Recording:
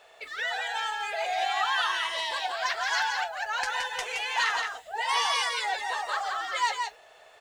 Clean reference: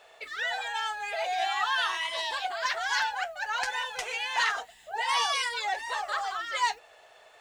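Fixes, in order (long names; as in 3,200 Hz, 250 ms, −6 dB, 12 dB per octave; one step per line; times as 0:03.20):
echo removal 170 ms −5 dB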